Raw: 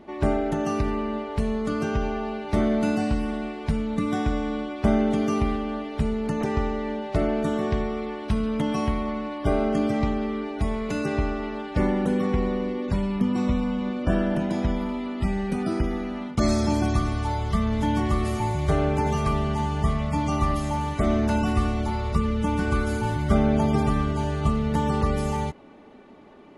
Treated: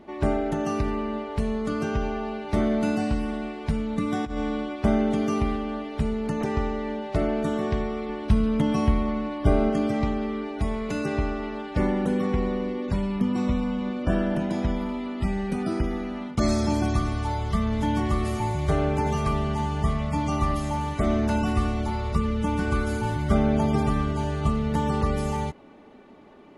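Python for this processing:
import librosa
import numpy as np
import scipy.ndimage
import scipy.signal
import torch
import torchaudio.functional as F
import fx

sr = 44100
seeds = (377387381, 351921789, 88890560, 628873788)

y = fx.over_compress(x, sr, threshold_db=-26.0, ratio=-0.5, at=(4.24, 4.76))
y = fx.low_shelf(y, sr, hz=240.0, db=7.0, at=(8.09, 9.7))
y = y * librosa.db_to_amplitude(-1.0)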